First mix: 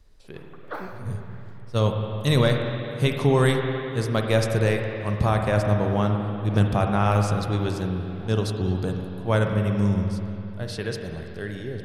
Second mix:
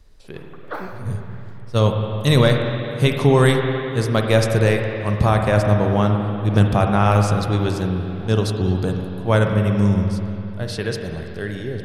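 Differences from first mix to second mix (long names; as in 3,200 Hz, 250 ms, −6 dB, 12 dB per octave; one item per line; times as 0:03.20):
speech +5.0 dB
background +4.0 dB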